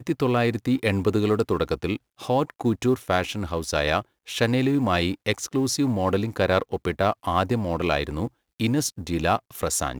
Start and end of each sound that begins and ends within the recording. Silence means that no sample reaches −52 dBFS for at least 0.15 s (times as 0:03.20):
0:02.18–0:04.05
0:04.26–0:08.29